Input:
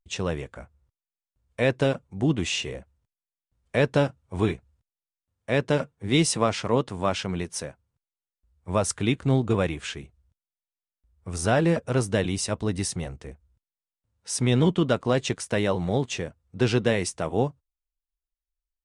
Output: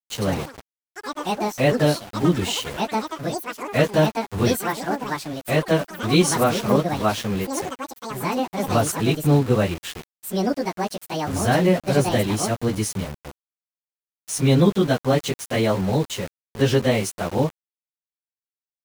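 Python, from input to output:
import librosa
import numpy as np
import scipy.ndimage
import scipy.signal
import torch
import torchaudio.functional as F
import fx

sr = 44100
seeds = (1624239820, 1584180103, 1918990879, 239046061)

y = fx.pitch_bins(x, sr, semitones=1.5)
y = np.where(np.abs(y) >= 10.0 ** (-36.5 / 20.0), y, 0.0)
y = fx.echo_pitch(y, sr, ms=133, semitones=6, count=3, db_per_echo=-6.0)
y = F.gain(torch.from_numpy(y), 6.0).numpy()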